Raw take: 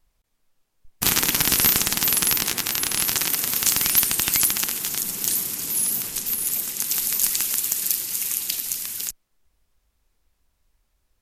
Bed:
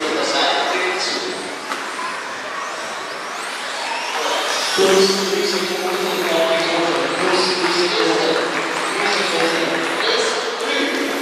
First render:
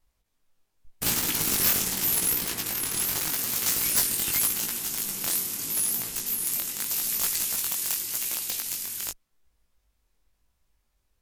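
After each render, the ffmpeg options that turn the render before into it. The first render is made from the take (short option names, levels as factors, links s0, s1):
-af "aeval=exprs='(mod(3.35*val(0)+1,2)-1)/3.35':c=same,flanger=delay=17:depth=5.1:speed=0.84"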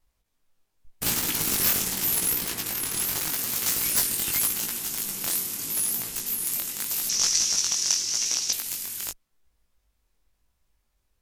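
-filter_complex "[0:a]asettb=1/sr,asplit=3[s0][s1][s2];[s0]atrim=end=7.094[s3];[s1]atrim=start=7.09:end=8.53,asetpts=PTS-STARTPTS,afade=t=in:d=0.004:c=qsin,afade=t=out:st=1.436:d=0.004:c=qsin,lowpass=f=5800:t=q:w=7[s4];[s2]atrim=start=8.526[s5];[s3][s4]acrossfade=d=0.004:c1=hsin:c2=qsin[s6];[s6][s5]acrossfade=d=0.004:c1=qsin:c2=hsin"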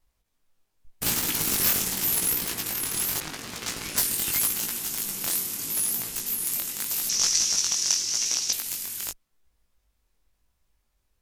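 -filter_complex "[0:a]asettb=1/sr,asplit=3[s0][s1][s2];[s0]atrim=end=3.204[s3];[s1]atrim=start=3.2:end=3.98,asetpts=PTS-STARTPTS,afade=t=in:d=0.004:c=qsin,afade=t=out:st=0.776:d=0.004:c=qsin,adynamicsmooth=sensitivity=2.5:basefreq=3500[s4];[s2]atrim=start=3.976[s5];[s3][s4]acrossfade=d=0.004:c1=hsin:c2=qsin[s6];[s6][s5]acrossfade=d=0.004:c1=qsin:c2=hsin"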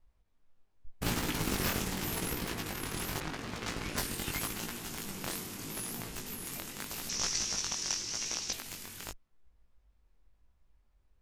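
-af "lowpass=f=1700:p=1,lowshelf=f=90:g=6"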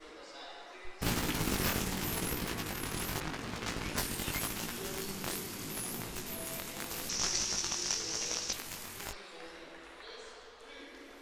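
-filter_complex "[1:a]volume=0.0282[s0];[0:a][s0]amix=inputs=2:normalize=0"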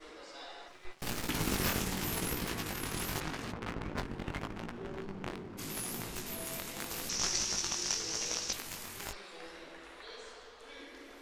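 -filter_complex "[0:a]asettb=1/sr,asplit=3[s0][s1][s2];[s0]atrim=end=0.684[s3];[s1]atrim=start=0.68:end=1.29,asetpts=PTS-STARTPTS,afade=t=in:d=0.004:c=qsin,afade=t=out:st=0.606:d=0.004:c=qsin,aeval=exprs='max(val(0),0)':c=same[s4];[s2]atrim=start=1.286[s5];[s3][s4]acrossfade=d=0.004:c1=hsin:c2=qsin[s6];[s6][s5]acrossfade=d=0.004:c1=qsin:c2=hsin,asplit=3[s7][s8][s9];[s7]afade=t=out:st=3.51:d=0.02[s10];[s8]adynamicsmooth=sensitivity=4.5:basefreq=790,afade=t=in:st=3.51:d=0.02,afade=t=out:st=5.57:d=0.02[s11];[s9]afade=t=in:st=5.57:d=0.02[s12];[s10][s11][s12]amix=inputs=3:normalize=0"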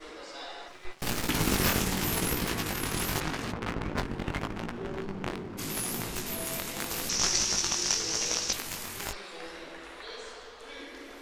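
-af "volume=2"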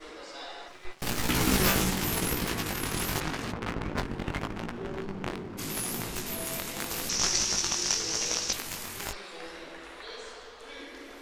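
-filter_complex "[0:a]asettb=1/sr,asplit=3[s0][s1][s2];[s0]atrim=end=1.174[s3];[s1]atrim=start=1.17:end=1.91,asetpts=PTS-STARTPTS,afade=t=in:d=0.004:c=qsin,afade=t=out:st=0.736:d=0.004:c=qsin,asplit=2[s4][s5];[s5]adelay=16,volume=0.75[s6];[s4][s6]amix=inputs=2:normalize=0,atrim=end_sample=32634[s7];[s2]atrim=start=1.906[s8];[s3][s7]acrossfade=d=0.004:c1=hsin:c2=qsin[s9];[s9][s8]acrossfade=d=0.004:c1=qsin:c2=hsin"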